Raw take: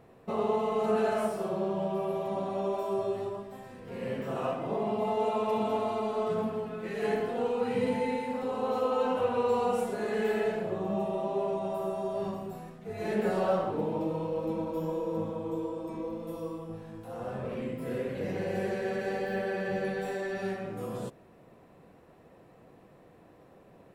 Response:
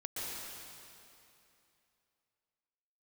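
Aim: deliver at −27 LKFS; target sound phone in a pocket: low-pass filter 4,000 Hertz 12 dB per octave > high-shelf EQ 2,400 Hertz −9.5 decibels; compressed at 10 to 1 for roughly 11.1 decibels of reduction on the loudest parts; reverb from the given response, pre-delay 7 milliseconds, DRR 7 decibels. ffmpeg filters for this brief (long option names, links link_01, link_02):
-filter_complex "[0:a]acompressor=threshold=-35dB:ratio=10,asplit=2[link_01][link_02];[1:a]atrim=start_sample=2205,adelay=7[link_03];[link_02][link_03]afir=irnorm=-1:irlink=0,volume=-9.5dB[link_04];[link_01][link_04]amix=inputs=2:normalize=0,lowpass=4000,highshelf=frequency=2400:gain=-9.5,volume=12dB"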